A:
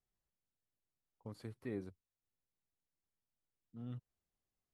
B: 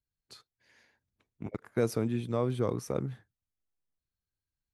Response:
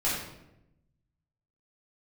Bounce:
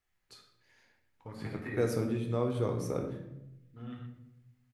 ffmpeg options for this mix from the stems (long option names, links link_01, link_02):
-filter_complex "[0:a]equalizer=frequency=1900:width_type=o:width=1.5:gain=12.5,acompressor=threshold=-41dB:ratio=6,volume=-2.5dB,asplit=3[link_01][link_02][link_03];[link_02]volume=-4dB[link_04];[link_03]volume=-3.5dB[link_05];[1:a]volume=-5.5dB,asplit=2[link_06][link_07];[link_07]volume=-9.5dB[link_08];[2:a]atrim=start_sample=2205[link_09];[link_04][link_08]amix=inputs=2:normalize=0[link_10];[link_10][link_09]afir=irnorm=-1:irlink=0[link_11];[link_05]aecho=0:1:121:1[link_12];[link_01][link_06][link_11][link_12]amix=inputs=4:normalize=0"